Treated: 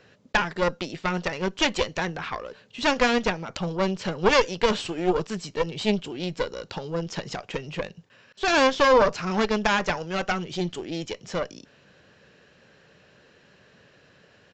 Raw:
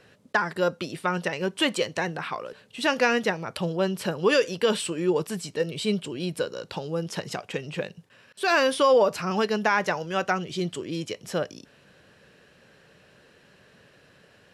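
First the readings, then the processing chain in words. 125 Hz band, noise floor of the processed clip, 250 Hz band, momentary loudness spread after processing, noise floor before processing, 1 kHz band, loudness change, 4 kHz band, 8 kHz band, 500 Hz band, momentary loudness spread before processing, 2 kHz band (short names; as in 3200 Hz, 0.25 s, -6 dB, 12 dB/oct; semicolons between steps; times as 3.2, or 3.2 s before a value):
+0.5 dB, -58 dBFS, +1.0 dB, 13 LU, -58 dBFS, +2.0 dB, +0.5 dB, +1.5 dB, -0.5 dB, 0.0 dB, 11 LU, +1.0 dB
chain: added harmonics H 4 -9 dB, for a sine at -8 dBFS; downsampling 16000 Hz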